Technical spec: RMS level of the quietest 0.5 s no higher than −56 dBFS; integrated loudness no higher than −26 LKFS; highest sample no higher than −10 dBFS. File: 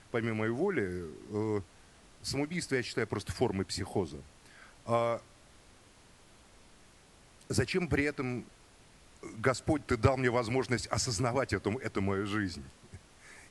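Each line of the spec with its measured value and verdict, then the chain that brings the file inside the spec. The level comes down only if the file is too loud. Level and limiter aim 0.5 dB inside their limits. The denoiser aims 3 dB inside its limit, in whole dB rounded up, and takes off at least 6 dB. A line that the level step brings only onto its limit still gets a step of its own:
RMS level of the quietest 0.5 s −59 dBFS: in spec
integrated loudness −33.0 LKFS: in spec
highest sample −11.5 dBFS: in spec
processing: no processing needed

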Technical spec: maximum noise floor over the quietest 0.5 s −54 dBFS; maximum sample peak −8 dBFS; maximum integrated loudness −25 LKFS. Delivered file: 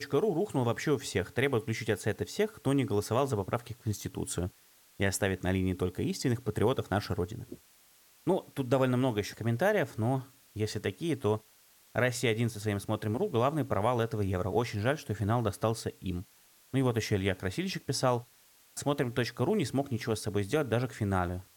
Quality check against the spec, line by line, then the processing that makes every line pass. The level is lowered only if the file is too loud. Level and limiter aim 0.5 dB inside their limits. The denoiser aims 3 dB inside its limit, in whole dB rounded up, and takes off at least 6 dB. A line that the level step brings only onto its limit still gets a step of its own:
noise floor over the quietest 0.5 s −62 dBFS: in spec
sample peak −16.0 dBFS: in spec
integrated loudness −31.5 LKFS: in spec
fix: no processing needed

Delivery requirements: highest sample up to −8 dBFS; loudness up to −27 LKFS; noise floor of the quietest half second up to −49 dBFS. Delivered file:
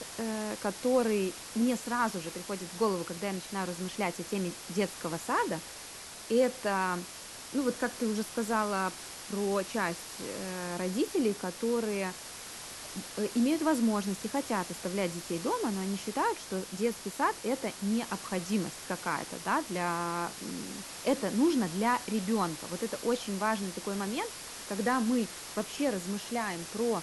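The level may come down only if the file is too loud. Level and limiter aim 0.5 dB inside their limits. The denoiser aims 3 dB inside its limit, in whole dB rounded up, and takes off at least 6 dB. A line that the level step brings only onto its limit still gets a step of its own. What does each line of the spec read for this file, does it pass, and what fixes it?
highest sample −15.0 dBFS: in spec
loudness −32.5 LKFS: in spec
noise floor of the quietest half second −46 dBFS: out of spec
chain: broadband denoise 6 dB, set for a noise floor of −46 dBFS

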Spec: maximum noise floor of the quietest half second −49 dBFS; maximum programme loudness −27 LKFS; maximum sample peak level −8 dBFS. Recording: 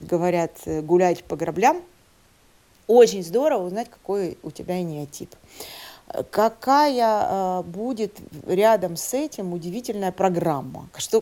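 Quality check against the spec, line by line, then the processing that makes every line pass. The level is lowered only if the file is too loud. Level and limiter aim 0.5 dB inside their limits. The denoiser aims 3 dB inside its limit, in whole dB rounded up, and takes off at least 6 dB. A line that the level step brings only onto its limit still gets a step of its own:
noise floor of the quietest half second −57 dBFS: in spec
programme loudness −22.5 LKFS: out of spec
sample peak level −3.5 dBFS: out of spec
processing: level −5 dB

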